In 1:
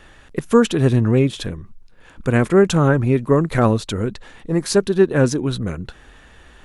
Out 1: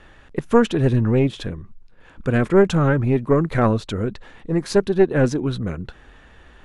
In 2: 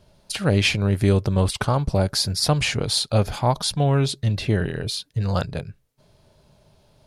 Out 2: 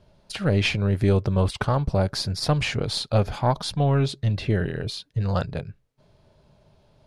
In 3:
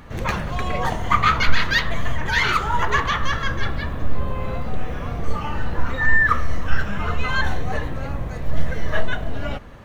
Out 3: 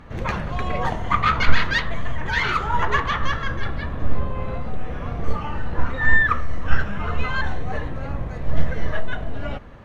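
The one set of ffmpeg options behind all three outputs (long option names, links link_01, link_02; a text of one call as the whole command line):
ffmpeg -i in.wav -af "aeval=exprs='0.891*(cos(1*acos(clip(val(0)/0.891,-1,1)))-cos(1*PI/2))+0.251*(cos(2*acos(clip(val(0)/0.891,-1,1)))-cos(2*PI/2))':channel_layout=same,aemphasis=mode=reproduction:type=50kf,volume=-1dB" out.wav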